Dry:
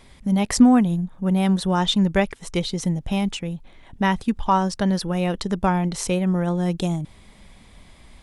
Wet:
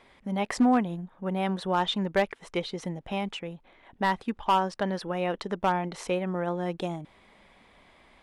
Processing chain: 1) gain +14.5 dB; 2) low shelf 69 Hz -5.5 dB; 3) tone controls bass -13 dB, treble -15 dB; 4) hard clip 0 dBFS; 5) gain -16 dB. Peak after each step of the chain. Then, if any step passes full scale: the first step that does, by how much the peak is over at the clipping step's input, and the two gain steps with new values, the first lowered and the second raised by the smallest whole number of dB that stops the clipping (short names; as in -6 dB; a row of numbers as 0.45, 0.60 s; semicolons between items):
+9.5, +9.0, +7.5, 0.0, -16.0 dBFS; step 1, 7.5 dB; step 1 +6.5 dB, step 5 -8 dB